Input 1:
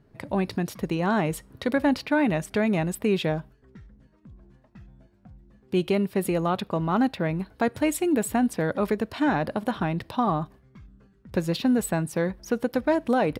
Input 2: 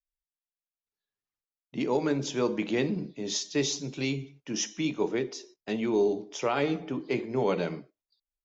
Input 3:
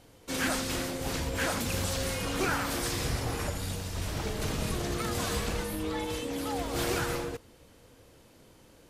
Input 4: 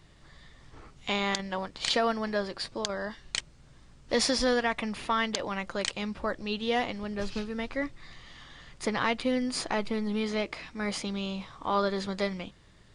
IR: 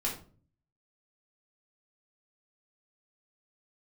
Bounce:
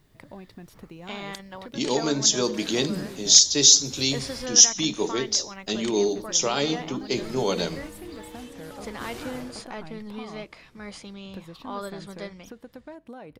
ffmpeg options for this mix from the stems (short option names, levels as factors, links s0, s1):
-filter_complex "[0:a]acompressor=threshold=0.0158:ratio=3,volume=0.422[s0];[1:a]aexciter=amount=8:drive=3.5:freq=3400,volume=1.19,asplit=2[s1][s2];[2:a]adelay=2250,volume=0.316,asplit=3[s3][s4][s5];[s3]atrim=end=4.46,asetpts=PTS-STARTPTS,afade=t=out:st=4.456:d=0.004:c=hsin[s6];[s4]atrim=start=4.46:end=7.11,asetpts=PTS-STARTPTS,volume=0[s7];[s5]atrim=start=7.11,asetpts=PTS-STARTPTS,afade=t=in:d=0.004:c=hsin[s8];[s6][s7][s8]concat=n=3:v=0:a=1[s9];[3:a]volume=0.422[s10];[s2]apad=whole_len=491415[s11];[s9][s11]sidechaincompress=threshold=0.0251:ratio=3:attack=48:release=181[s12];[s0][s1][s12][s10]amix=inputs=4:normalize=0"